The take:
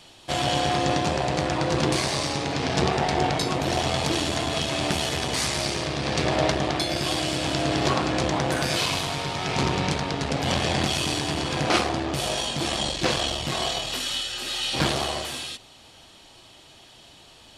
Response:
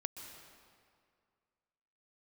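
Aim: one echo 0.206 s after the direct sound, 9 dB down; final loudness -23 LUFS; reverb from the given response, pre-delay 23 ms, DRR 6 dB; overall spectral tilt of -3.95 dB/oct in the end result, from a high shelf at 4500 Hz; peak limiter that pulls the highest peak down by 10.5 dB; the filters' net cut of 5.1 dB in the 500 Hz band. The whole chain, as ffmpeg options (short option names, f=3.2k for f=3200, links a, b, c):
-filter_complex "[0:a]equalizer=f=500:t=o:g=-7,highshelf=f=4.5k:g=-5,alimiter=limit=-20.5dB:level=0:latency=1,aecho=1:1:206:0.355,asplit=2[a][b];[1:a]atrim=start_sample=2205,adelay=23[c];[b][c]afir=irnorm=-1:irlink=0,volume=-4.5dB[d];[a][d]amix=inputs=2:normalize=0,volume=5.5dB"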